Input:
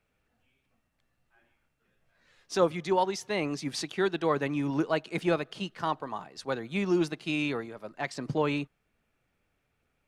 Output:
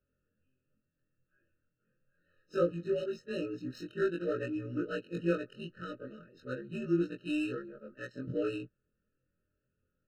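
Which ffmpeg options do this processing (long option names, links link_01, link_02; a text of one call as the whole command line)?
ffmpeg -i in.wav -af "afftfilt=real='re':imag='-im':win_size=2048:overlap=0.75,adynamicsmooth=sensitivity=6:basefreq=1900,afftfilt=real='re*eq(mod(floor(b*sr/1024/620),2),0)':imag='im*eq(mod(floor(b*sr/1024/620),2),0)':win_size=1024:overlap=0.75" out.wav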